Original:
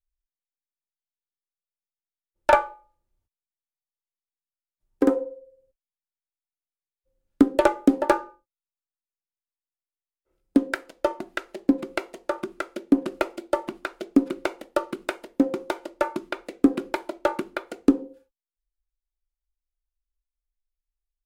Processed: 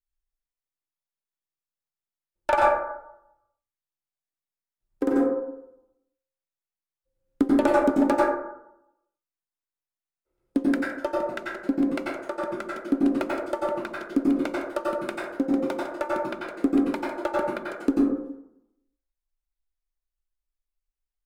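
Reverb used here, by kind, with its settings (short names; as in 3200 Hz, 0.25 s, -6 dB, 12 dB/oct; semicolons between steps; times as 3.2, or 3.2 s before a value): plate-style reverb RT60 0.83 s, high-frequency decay 0.35×, pre-delay 80 ms, DRR -4 dB; gain -6 dB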